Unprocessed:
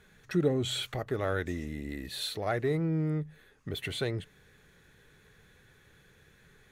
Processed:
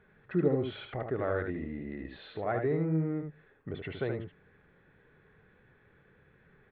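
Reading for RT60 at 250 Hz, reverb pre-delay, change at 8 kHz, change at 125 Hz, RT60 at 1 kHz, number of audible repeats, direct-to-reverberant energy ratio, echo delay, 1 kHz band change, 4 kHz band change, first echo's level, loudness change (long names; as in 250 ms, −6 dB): no reverb audible, no reverb audible, below −35 dB, −2.0 dB, no reverb audible, 1, no reverb audible, 75 ms, 0.0 dB, −14.5 dB, −5.5 dB, −1.0 dB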